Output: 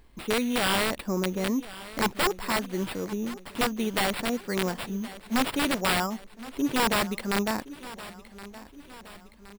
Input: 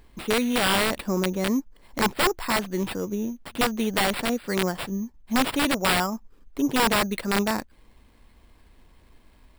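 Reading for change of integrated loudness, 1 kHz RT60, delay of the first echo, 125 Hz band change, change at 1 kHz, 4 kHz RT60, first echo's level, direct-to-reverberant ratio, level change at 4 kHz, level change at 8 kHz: −3.0 dB, no reverb audible, 1,069 ms, −3.0 dB, −3.0 dB, no reverb audible, −17.0 dB, no reverb audible, −3.0 dB, −3.0 dB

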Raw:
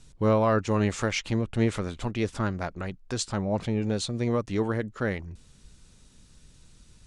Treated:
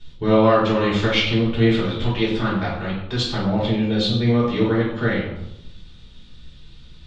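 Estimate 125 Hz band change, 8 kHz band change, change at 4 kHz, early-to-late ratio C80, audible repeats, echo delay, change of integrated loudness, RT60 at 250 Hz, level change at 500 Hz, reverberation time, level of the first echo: +7.0 dB, can't be measured, +13.0 dB, 6.0 dB, no echo audible, no echo audible, +8.0 dB, 1.0 s, +7.5 dB, 0.90 s, no echo audible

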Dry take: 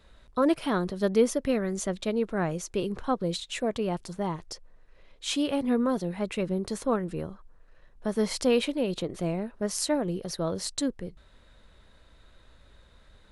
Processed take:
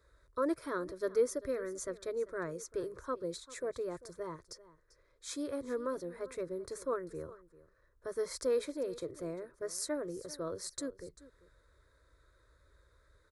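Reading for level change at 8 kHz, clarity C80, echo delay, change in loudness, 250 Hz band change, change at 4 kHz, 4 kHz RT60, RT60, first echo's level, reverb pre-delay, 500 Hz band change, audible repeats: −7.5 dB, no reverb audible, 393 ms, −9.5 dB, −14.0 dB, −14.0 dB, no reverb audible, no reverb audible, −18.5 dB, no reverb audible, −7.0 dB, 1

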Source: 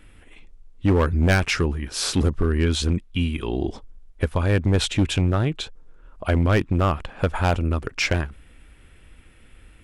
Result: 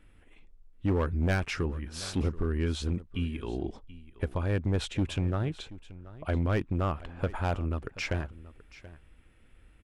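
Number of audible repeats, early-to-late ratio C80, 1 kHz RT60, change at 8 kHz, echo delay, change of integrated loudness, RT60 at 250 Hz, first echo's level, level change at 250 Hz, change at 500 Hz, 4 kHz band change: 1, no reverb audible, no reverb audible, −13.5 dB, 730 ms, −9.0 dB, no reverb audible, −18.0 dB, −8.5 dB, −8.5 dB, −12.5 dB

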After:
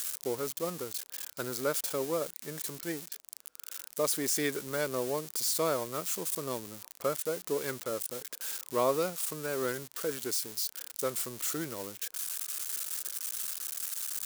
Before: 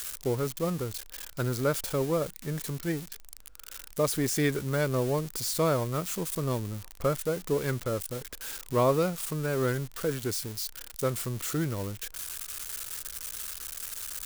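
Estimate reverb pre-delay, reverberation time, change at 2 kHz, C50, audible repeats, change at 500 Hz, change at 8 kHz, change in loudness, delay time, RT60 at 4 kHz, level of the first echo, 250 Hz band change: no reverb audible, no reverb audible, −3.0 dB, no reverb audible, no echo audible, −3.5 dB, +1.5 dB, −2.5 dB, no echo audible, no reverb audible, no echo audible, −7.0 dB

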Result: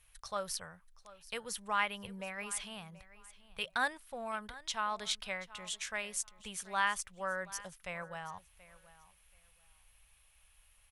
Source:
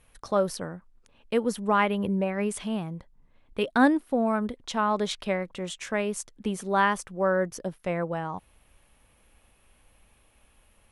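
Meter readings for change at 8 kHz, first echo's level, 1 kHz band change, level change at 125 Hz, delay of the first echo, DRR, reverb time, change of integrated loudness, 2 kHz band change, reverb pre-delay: −0.5 dB, −18.5 dB, −9.5 dB, −19.0 dB, 730 ms, no reverb audible, no reverb audible, −10.5 dB, −5.5 dB, no reverb audible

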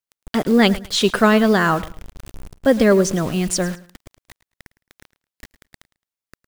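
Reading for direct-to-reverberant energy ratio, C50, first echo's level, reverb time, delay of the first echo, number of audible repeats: no reverb audible, no reverb audible, −18.0 dB, no reverb audible, 108 ms, 2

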